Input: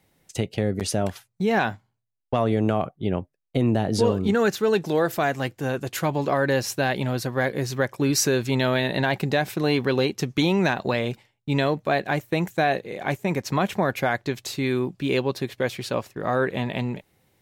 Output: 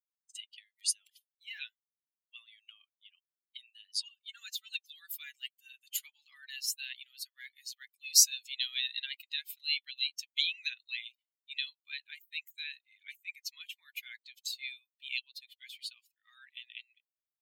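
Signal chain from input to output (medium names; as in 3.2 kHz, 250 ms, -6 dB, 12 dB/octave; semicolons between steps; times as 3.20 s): expander on every frequency bin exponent 2; steep high-pass 2.6 kHz 36 dB/octave; trim +4 dB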